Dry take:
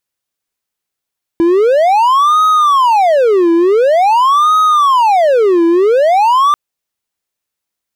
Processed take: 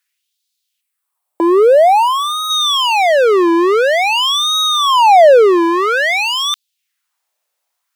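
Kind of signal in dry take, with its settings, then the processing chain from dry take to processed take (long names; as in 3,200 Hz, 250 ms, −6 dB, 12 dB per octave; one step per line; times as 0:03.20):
siren wail 334–1,260 Hz 0.47 per second triangle −4.5 dBFS 5.14 s
gain on a spectral selection 0:00.81–0:02.50, 1,300–7,500 Hz −8 dB
auto-filter high-pass sine 0.5 Hz 600–3,900 Hz
in parallel at −1 dB: brickwall limiter −12.5 dBFS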